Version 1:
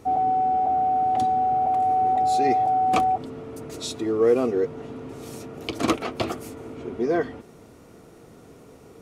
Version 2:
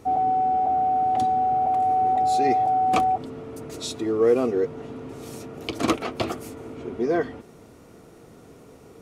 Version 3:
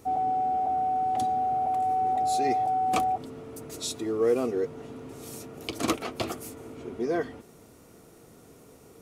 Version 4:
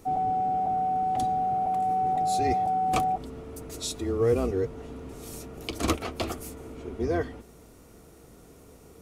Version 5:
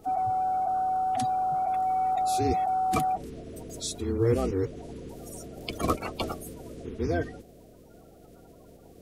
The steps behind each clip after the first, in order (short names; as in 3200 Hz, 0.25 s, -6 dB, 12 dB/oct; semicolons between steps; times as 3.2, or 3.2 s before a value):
nothing audible
high shelf 6600 Hz +11.5 dB; gain -5 dB
octaver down 2 oct, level -1 dB
bin magnitudes rounded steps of 30 dB